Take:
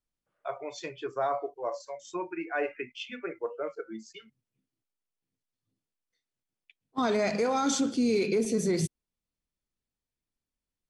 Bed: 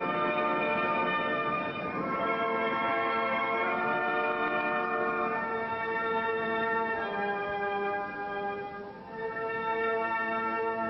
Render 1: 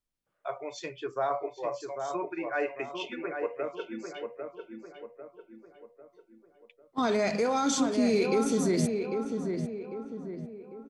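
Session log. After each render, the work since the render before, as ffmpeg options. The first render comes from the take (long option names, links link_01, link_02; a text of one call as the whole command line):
ffmpeg -i in.wav -filter_complex "[0:a]asplit=2[link_01][link_02];[link_02]adelay=798,lowpass=frequency=1700:poles=1,volume=-5dB,asplit=2[link_03][link_04];[link_04]adelay=798,lowpass=frequency=1700:poles=1,volume=0.47,asplit=2[link_05][link_06];[link_06]adelay=798,lowpass=frequency=1700:poles=1,volume=0.47,asplit=2[link_07][link_08];[link_08]adelay=798,lowpass=frequency=1700:poles=1,volume=0.47,asplit=2[link_09][link_10];[link_10]adelay=798,lowpass=frequency=1700:poles=1,volume=0.47,asplit=2[link_11][link_12];[link_12]adelay=798,lowpass=frequency=1700:poles=1,volume=0.47[link_13];[link_01][link_03][link_05][link_07][link_09][link_11][link_13]amix=inputs=7:normalize=0" out.wav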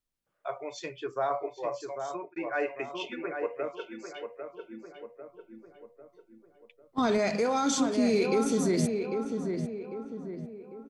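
ffmpeg -i in.wav -filter_complex "[0:a]asettb=1/sr,asplit=3[link_01][link_02][link_03];[link_01]atrim=end=3.724[link_04];[link_02]atrim=start=3.72:end=4.5,asetpts=PTS-STARTPTS,afade=type=in:duration=0.004:curve=qsin,afade=type=out:start_time=0.776:duration=0.004:curve=qsin,equalizer=frequency=190:width=0.81:gain=-7[link_05];[link_03]atrim=start=4.496[link_06];[link_04][link_05]acrossfade=duration=0.004:curve1=hsin:curve2=qsin[link_07];[link_07][link_06]acrossfade=duration=0.004:curve1=qsin:curve2=hsin,asettb=1/sr,asplit=3[link_08][link_09][link_10];[link_08]atrim=end=5.294[link_11];[link_09]atrim=start=5.29:end=7.18,asetpts=PTS-STARTPTS,afade=type=in:duration=0.004:curve=qsin,afade=type=out:start_time=1.886:duration=0.004:curve=qsin,lowshelf=frequency=110:gain=12[link_12];[link_10]atrim=start=7.176[link_13];[link_11][link_12]acrossfade=duration=0.004:curve1=hsin:curve2=qsin[link_14];[link_14][link_13]acrossfade=duration=0.004:curve1=qsin:curve2=hsin,asplit=2[link_15][link_16];[link_15]atrim=end=2.36,asetpts=PTS-STARTPTS,afade=type=out:start_time=1.9:duration=0.46:curve=qsin[link_17];[link_16]atrim=start=2.36,asetpts=PTS-STARTPTS,afade=type=in:duration=0.004:curve=hsin[link_18];[link_17][link_18]concat=n=2:v=0:a=1" out.wav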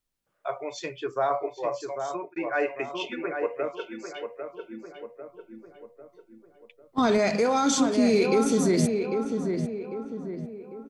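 ffmpeg -i in.wav -af "volume=4dB" out.wav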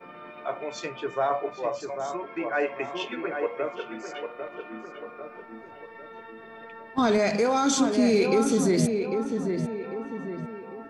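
ffmpeg -i in.wav -i bed.wav -filter_complex "[1:a]volume=-15dB[link_01];[0:a][link_01]amix=inputs=2:normalize=0" out.wav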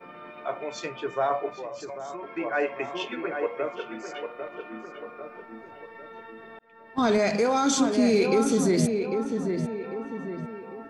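ffmpeg -i in.wav -filter_complex "[0:a]asettb=1/sr,asplit=3[link_01][link_02][link_03];[link_01]atrim=end=1.484[link_04];[link_02]atrim=start=1.48:end=2.23,asetpts=PTS-STARTPTS,afade=type=in:duration=0.004:curve=qsin,afade=type=out:start_time=0.746:duration=0.004:curve=qsin,acompressor=threshold=-33dB:ratio=4:attack=3.2:release=140:knee=1:detection=peak[link_05];[link_03]atrim=start=2.226[link_06];[link_04][link_05]acrossfade=duration=0.004:curve1=hsin:curve2=qsin[link_07];[link_07][link_06]acrossfade=duration=0.004:curve1=qsin:curve2=hsin,asplit=2[link_08][link_09];[link_08]atrim=end=6.59,asetpts=PTS-STARTPTS,afade=type=out:start_time=6.586:duration=0.004:curve=hsin[link_10];[link_09]atrim=start=6.59,asetpts=PTS-STARTPTS,afade=type=in:duration=0.48[link_11];[link_10][link_11]concat=n=2:v=0:a=1" out.wav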